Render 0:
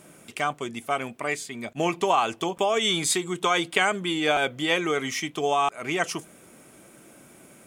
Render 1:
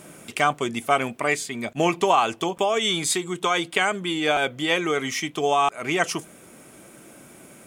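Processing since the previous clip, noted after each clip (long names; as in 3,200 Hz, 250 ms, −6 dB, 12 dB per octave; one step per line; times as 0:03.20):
speech leveller 2 s
level +2 dB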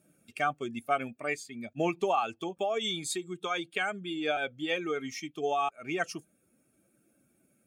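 spectral dynamics exaggerated over time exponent 1.5
high-shelf EQ 5,800 Hz −5 dB
notch comb filter 1,000 Hz
level −5.5 dB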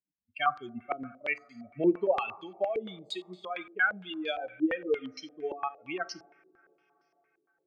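spectral dynamics exaggerated over time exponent 2
coupled-rooms reverb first 0.59 s, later 4.5 s, from −21 dB, DRR 14 dB
low-pass on a step sequencer 8.7 Hz 360–4,400 Hz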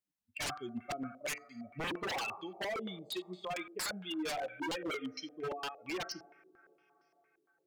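wave folding −32 dBFS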